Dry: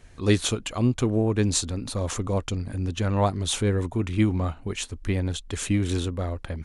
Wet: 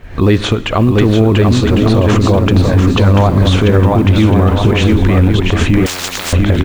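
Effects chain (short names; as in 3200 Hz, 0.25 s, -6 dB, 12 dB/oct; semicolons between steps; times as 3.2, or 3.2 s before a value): recorder AGC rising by 63 dB/s; LPF 2700 Hz 12 dB/oct; companded quantiser 8-bit; bouncing-ball echo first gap 0.69 s, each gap 0.6×, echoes 5; reverb RT60 1.7 s, pre-delay 51 ms, DRR 17.5 dB; maximiser +15 dB; 5.86–6.33 spectral compressor 10:1; gain -1 dB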